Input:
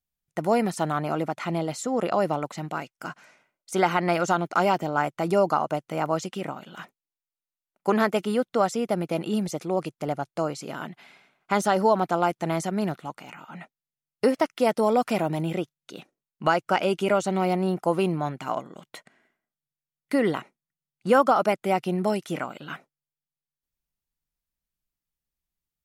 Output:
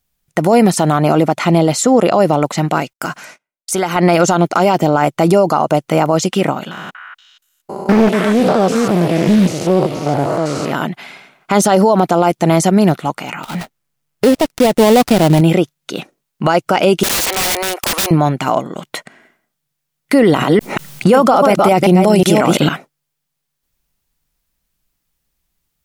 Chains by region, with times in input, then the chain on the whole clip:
2.93–3.96 gate -58 dBFS, range -32 dB + high shelf 6000 Hz +8.5 dB + compressor 3:1, threshold -34 dBFS
6.71–10.72 stepped spectrum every 0.2 s + delay with a stepping band-pass 0.237 s, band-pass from 1700 Hz, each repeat 1.4 oct, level -2 dB + Doppler distortion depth 0.44 ms
13.43–15.41 switching dead time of 0.21 ms + low shelf 110 Hz +8 dB
17.03–18.11 inverse Chebyshev high-pass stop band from 180 Hz, stop band 50 dB + tilt shelf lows -4.5 dB, about 890 Hz + wrapped overs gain 28.5 dB
20.23–22.69 reverse delay 0.182 s, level -7 dB + fast leveller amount 50%
whole clip: dynamic EQ 1500 Hz, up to -5 dB, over -38 dBFS, Q 0.95; maximiser +18.5 dB; gain -1 dB

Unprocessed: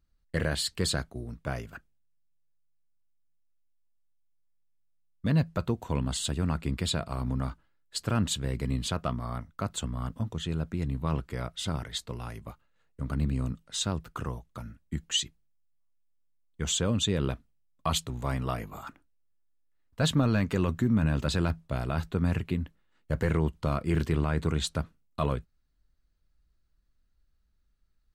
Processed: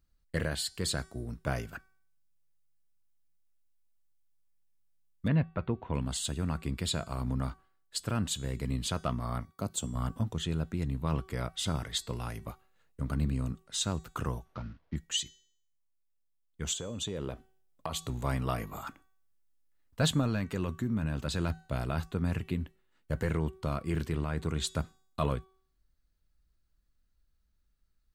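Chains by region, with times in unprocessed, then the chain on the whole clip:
5.28–5.94 LPF 2900 Hz 24 dB/oct + bell 2100 Hz +2.5 dB 0.29 oct
9.45–9.95 HPF 140 Hz 6 dB/oct + bell 1700 Hz -12 dB 1.9 oct
14.45–14.96 CVSD 32 kbps + air absorption 210 m
16.73–18.07 bell 530 Hz +8 dB 1.5 oct + compressor, threshold -33 dBFS + short-mantissa float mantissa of 8-bit
whole clip: high shelf 6600 Hz +5 dB; de-hum 379.2 Hz, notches 35; vocal rider within 4 dB 0.5 s; gain -3 dB

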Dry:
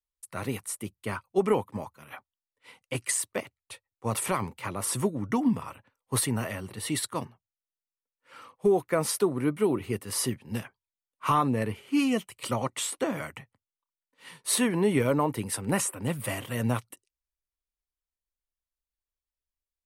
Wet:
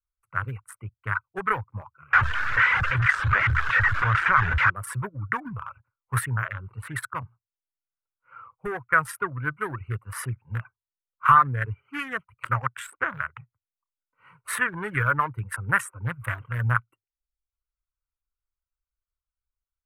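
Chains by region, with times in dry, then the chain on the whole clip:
2.13–4.7 delta modulation 64 kbps, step -23.5 dBFS + LPF 5200 Hz 24 dB/oct + fast leveller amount 50%
whole clip: Wiener smoothing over 25 samples; reverb removal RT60 0.53 s; EQ curve 120 Hz 0 dB, 230 Hz -22 dB, 490 Hz -15 dB, 750 Hz -13 dB, 1500 Hz +14 dB, 4300 Hz -20 dB, 6900 Hz -16 dB, 13000 Hz -9 dB; gain +7 dB

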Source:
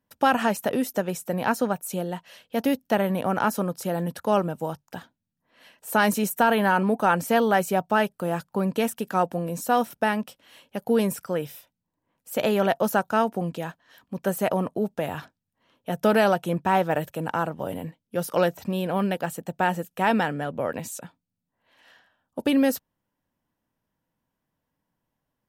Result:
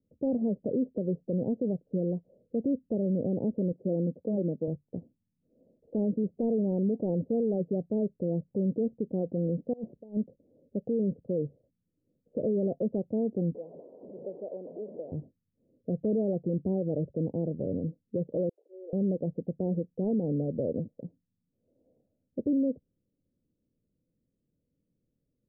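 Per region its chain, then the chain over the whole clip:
3.72–4.68 self-modulated delay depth 0.47 ms + HPF 170 Hz
9.73–10.17 low shelf 410 Hz -10.5 dB + negative-ratio compressor -37 dBFS
13.55–15.12 delta modulation 16 kbps, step -22 dBFS + HPF 840 Hz + three-band squash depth 40%
18.49–18.93 auto swell 0.379 s + compressor 5:1, threshold -36 dBFS + steep high-pass 350 Hz 72 dB/oct
whole clip: steep low-pass 530 Hz 48 dB/oct; limiter -23.5 dBFS; gain +2.5 dB

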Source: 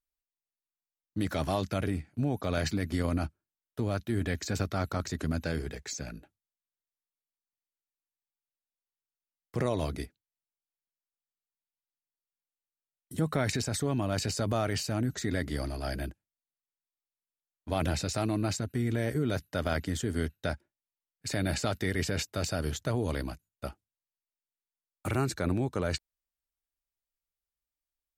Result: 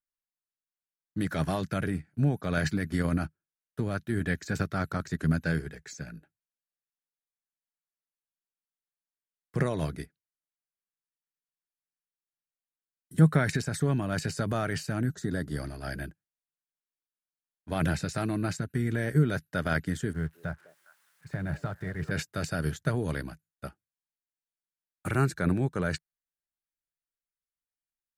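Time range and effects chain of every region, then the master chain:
15.12–15.57 HPF 52 Hz + bell 2200 Hz -14.5 dB 0.61 oct
20.13–22.11 switching spikes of -28 dBFS + EQ curve 160 Hz 0 dB, 230 Hz -9 dB, 1000 Hz -2 dB, 1700 Hz -8 dB, 13000 Hz -28 dB + delay with a stepping band-pass 0.204 s, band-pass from 470 Hz, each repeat 1.4 oct, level -8.5 dB
whole clip: fifteen-band EQ 160 Hz +11 dB, 400 Hz +3 dB, 1600 Hz +10 dB, 10000 Hz +5 dB; upward expander 1.5:1, over -40 dBFS; gain +1.5 dB

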